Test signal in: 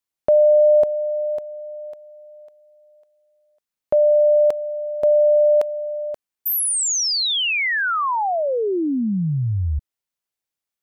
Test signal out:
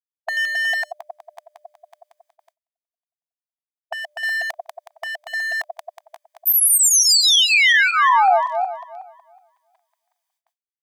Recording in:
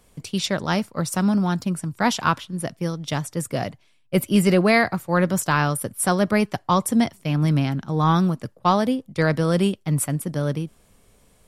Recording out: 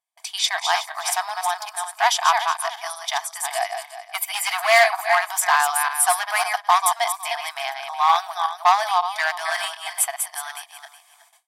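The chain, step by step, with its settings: regenerating reverse delay 0.184 s, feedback 43%, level -6 dB; gate with hold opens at -40 dBFS, closes at -46 dBFS, hold 15 ms, range -32 dB; notch comb 1400 Hz; hard clip -13.5 dBFS; brick-wall FIR high-pass 650 Hz; gain +6.5 dB

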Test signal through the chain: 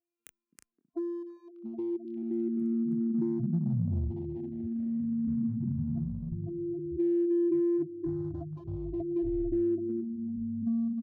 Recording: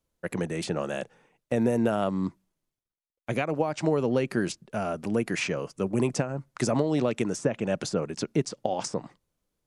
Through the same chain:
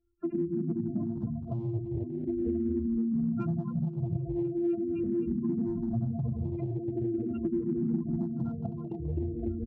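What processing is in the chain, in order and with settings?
sample sorter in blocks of 128 samples; doubler 24 ms -7 dB; dynamic EQ 1200 Hz, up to -6 dB, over -41 dBFS, Q 0.92; step gate "xxxx.xxxxx.xxx" 84 bpm -24 dB; echoes that change speed 0.188 s, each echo -7 st, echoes 3, each echo -6 dB; spectral gate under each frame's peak -10 dB strong; bell 880 Hz -14 dB 0.47 oct; on a send: delay with a stepping band-pass 0.259 s, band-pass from 200 Hz, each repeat 0.7 oct, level -1 dB; on the sum: compressor 6:1, threshold -31 dBFS; in parallel at -10.5 dB: overloaded stage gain 31.5 dB; on the sum: endless phaser -0.42 Hz; gain +4.5 dB

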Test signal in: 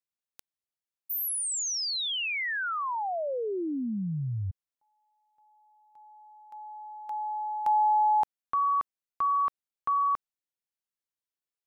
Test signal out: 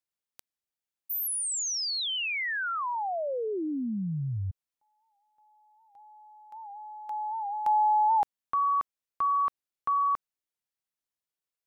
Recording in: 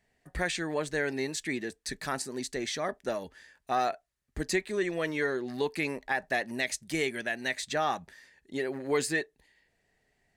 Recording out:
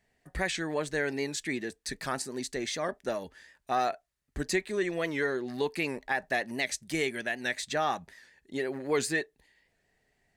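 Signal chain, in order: record warp 78 rpm, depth 100 cents

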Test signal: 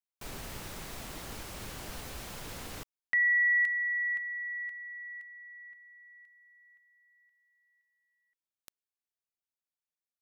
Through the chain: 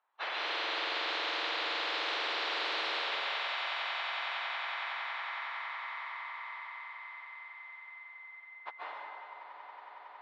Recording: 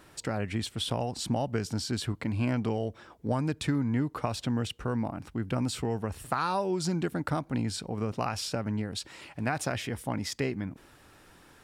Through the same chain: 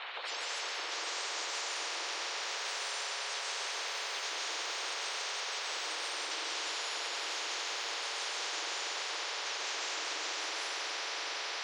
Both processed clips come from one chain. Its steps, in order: spectrum mirrored in octaves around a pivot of 2000 Hz; high shelf 2700 Hz -8.5 dB; limiter -32 dBFS; elliptic band-pass 900–3800 Hz, stop band 60 dB; swelling echo 92 ms, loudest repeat 8, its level -15 dB; plate-style reverb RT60 2.2 s, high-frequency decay 0.85×, pre-delay 0.12 s, DRR -7.5 dB; spectral compressor 10:1

